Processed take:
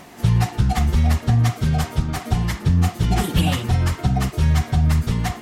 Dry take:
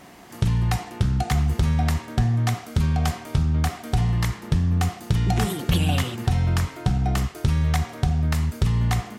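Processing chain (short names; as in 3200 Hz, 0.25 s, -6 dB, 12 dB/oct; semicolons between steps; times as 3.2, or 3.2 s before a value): plain phase-vocoder stretch 0.59×; gain +6.5 dB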